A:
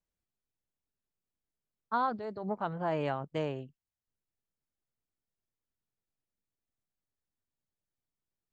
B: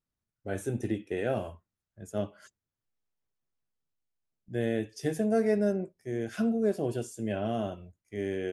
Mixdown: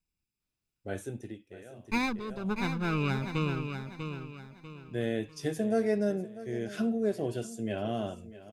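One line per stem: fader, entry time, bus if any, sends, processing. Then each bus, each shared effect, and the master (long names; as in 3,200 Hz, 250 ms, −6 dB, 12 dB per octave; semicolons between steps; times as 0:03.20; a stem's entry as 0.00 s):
+0.5 dB, 0.00 s, no send, echo send −7.5 dB, lower of the sound and its delayed copy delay 0.39 ms; comb filter 0.8 ms, depth 79%
−2.0 dB, 0.40 s, no send, echo send −16.5 dB, automatic ducking −24 dB, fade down 1.00 s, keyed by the first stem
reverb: not used
echo: repeating echo 644 ms, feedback 36%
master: parametric band 3,700 Hz +4.5 dB 1 octave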